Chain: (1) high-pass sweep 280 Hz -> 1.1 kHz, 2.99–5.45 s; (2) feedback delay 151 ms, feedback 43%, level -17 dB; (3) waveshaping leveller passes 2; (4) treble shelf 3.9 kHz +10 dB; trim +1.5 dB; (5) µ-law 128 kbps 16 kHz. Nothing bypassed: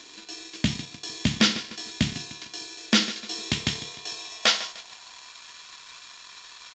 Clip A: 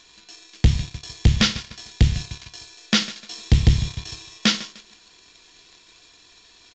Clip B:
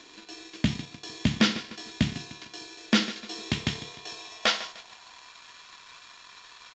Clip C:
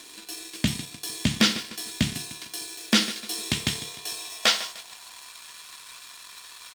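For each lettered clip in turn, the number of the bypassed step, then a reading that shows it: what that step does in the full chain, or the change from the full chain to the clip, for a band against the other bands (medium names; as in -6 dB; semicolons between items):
1, 125 Hz band +12.5 dB; 4, 8 kHz band -7.0 dB; 5, 8 kHz band +2.5 dB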